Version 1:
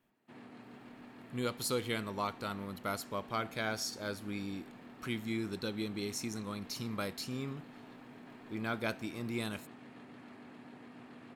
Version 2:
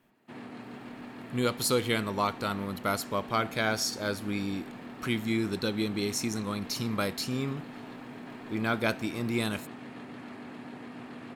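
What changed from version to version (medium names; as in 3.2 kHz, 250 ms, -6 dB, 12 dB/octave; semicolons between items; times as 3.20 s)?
speech +7.5 dB; background +9.0 dB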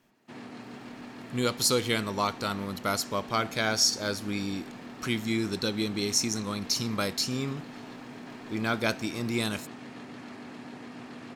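master: add peaking EQ 5.8 kHz +9 dB 0.93 oct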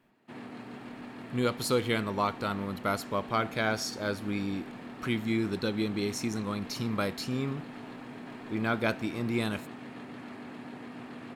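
speech: add treble shelf 4.5 kHz -7.5 dB; master: add peaking EQ 5.8 kHz -9 dB 0.93 oct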